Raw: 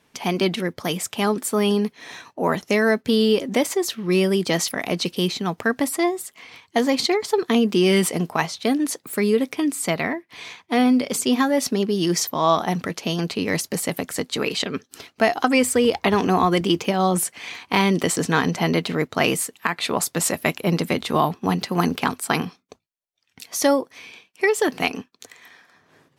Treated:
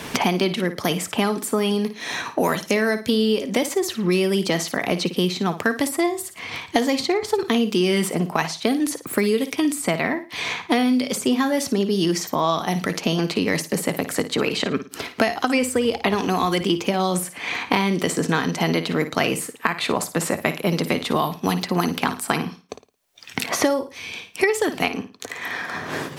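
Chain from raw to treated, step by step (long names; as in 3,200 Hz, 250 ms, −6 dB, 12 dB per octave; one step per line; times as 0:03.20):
flutter between parallel walls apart 9.5 metres, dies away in 0.27 s
multiband upward and downward compressor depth 100%
level −1.5 dB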